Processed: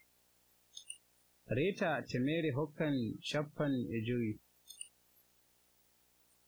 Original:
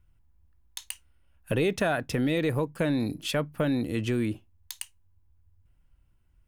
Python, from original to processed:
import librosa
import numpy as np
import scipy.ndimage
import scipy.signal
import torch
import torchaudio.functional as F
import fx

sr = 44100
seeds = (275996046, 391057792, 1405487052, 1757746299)

y = fx.dmg_buzz(x, sr, base_hz=60.0, harmonics=15, level_db=-44.0, tilt_db=-2, odd_only=False)
y = fx.quant_dither(y, sr, seeds[0], bits=6, dither='triangular')
y = fx.noise_reduce_blind(y, sr, reduce_db=28)
y = y * librosa.db_to_amplitude(-8.5)